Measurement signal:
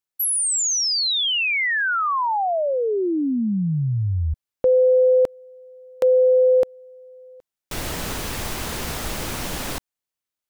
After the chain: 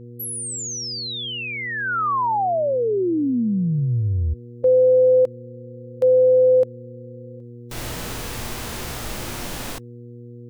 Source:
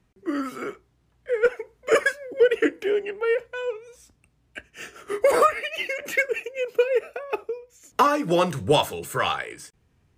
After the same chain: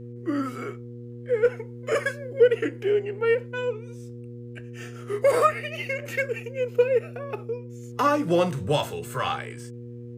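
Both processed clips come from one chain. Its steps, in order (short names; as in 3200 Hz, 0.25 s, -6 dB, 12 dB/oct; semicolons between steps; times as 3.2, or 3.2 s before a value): buzz 120 Hz, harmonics 4, -40 dBFS -4 dB/oct; harmonic-percussive split harmonic +9 dB; gain -8 dB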